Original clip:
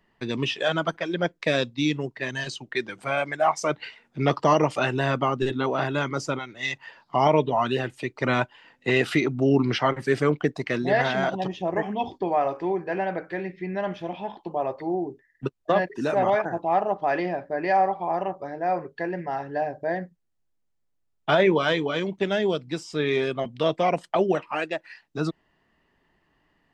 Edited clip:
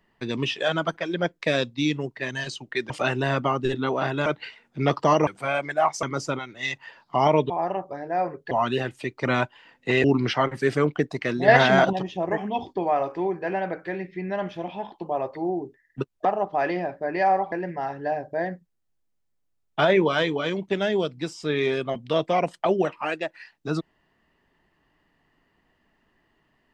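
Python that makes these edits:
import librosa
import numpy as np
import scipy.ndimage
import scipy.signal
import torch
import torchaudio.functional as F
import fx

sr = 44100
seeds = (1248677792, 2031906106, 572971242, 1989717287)

y = fx.edit(x, sr, fx.swap(start_s=2.9, length_s=0.76, other_s=4.67, other_length_s=1.36),
    fx.cut(start_s=9.03, length_s=0.46),
    fx.clip_gain(start_s=10.93, length_s=0.45, db=7.0),
    fx.cut(start_s=15.7, length_s=1.04),
    fx.move(start_s=18.01, length_s=1.01, to_s=7.5), tone=tone)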